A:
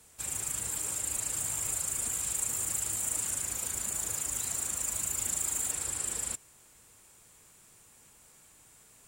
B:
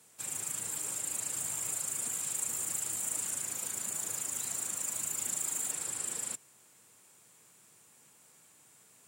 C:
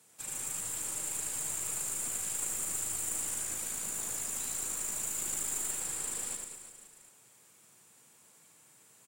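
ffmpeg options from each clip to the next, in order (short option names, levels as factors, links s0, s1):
-af "highpass=f=120:w=0.5412,highpass=f=120:w=1.3066,volume=0.75"
-af "aeval=exprs='(tanh(12.6*val(0)+0.5)-tanh(0.5))/12.6':c=same,aecho=1:1:90|202.5|343.1|518.9|738.6:0.631|0.398|0.251|0.158|0.1"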